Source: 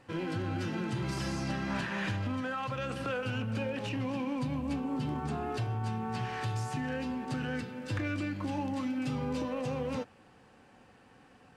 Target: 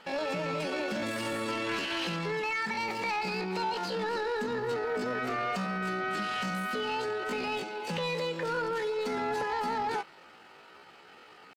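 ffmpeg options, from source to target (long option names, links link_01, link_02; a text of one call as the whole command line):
ffmpeg -i in.wav -filter_complex "[0:a]asplit=2[link_01][link_02];[link_02]highpass=frequency=720:poles=1,volume=16dB,asoftclip=type=tanh:threshold=-22.5dB[link_03];[link_01][link_03]amix=inputs=2:normalize=0,lowpass=frequency=1300:poles=1,volume=-6dB,asetrate=74167,aresample=44100,atempo=0.594604,volume=1dB" out.wav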